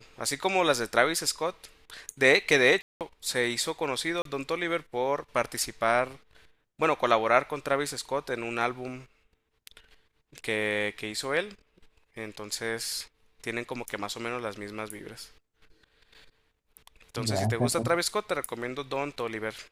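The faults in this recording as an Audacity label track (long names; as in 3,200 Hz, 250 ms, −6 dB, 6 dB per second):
2.820000	3.010000	drop-out 188 ms
4.220000	4.250000	drop-out 33 ms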